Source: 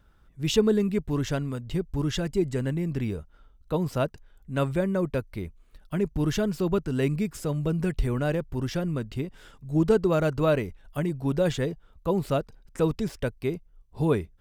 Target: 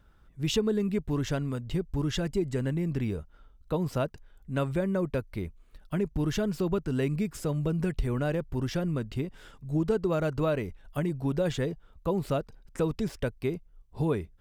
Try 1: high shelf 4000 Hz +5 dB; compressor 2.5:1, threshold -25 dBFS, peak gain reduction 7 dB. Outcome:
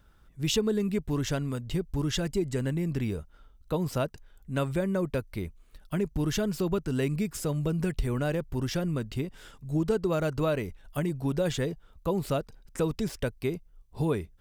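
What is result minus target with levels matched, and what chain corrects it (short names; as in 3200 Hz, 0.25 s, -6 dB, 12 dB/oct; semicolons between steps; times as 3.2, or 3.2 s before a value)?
8000 Hz band +5.0 dB
high shelf 4000 Hz -2 dB; compressor 2.5:1, threshold -25 dBFS, peak gain reduction 7 dB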